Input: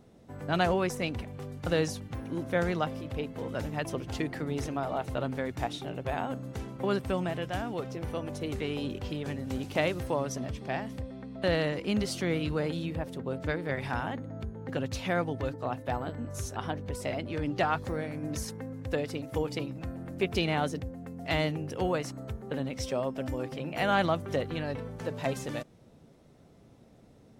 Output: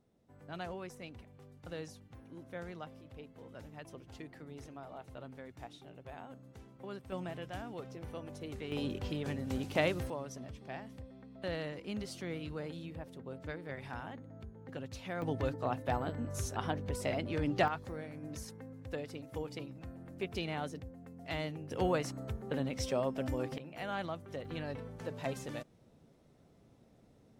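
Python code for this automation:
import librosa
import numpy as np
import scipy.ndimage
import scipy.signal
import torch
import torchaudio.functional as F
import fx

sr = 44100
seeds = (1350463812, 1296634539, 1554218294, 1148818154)

y = fx.gain(x, sr, db=fx.steps((0.0, -16.0), (7.12, -9.5), (8.72, -2.5), (10.1, -11.0), (15.22, -1.5), (17.68, -9.5), (21.71, -2.0), (23.58, -12.5), (24.45, -6.5)))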